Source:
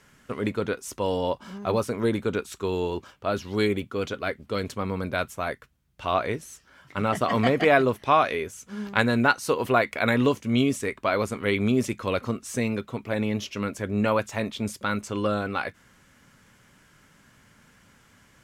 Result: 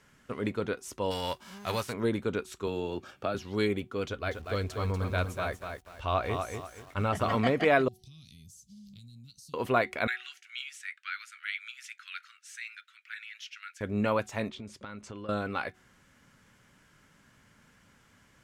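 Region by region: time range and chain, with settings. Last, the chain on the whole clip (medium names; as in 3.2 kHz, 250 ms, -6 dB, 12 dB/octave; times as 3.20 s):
1.10–1.92 s: formants flattened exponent 0.6 + peaking EQ 280 Hz -6 dB 2.3 oct
2.67–3.35 s: peaking EQ 420 Hz -3.5 dB 0.35 oct + comb of notches 1 kHz + three bands compressed up and down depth 100%
4.07–7.35 s: resonant low shelf 110 Hz +9 dB, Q 1.5 + band-stop 2 kHz, Q 18 + bit-crushed delay 241 ms, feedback 35%, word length 8-bit, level -5.5 dB
7.88–9.54 s: elliptic band-stop 170–4400 Hz, stop band 50 dB + peaking EQ 1.3 kHz +6 dB 1.3 oct + compression 10:1, threshold -43 dBFS
10.07–13.81 s: steep high-pass 1.4 kHz 72 dB/octave + treble shelf 6.2 kHz -10.5 dB
14.49–15.29 s: compression 12:1, threshold -33 dBFS + distance through air 60 m
whole clip: treble shelf 9.5 kHz -4 dB; de-hum 371.6 Hz, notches 2; trim -4.5 dB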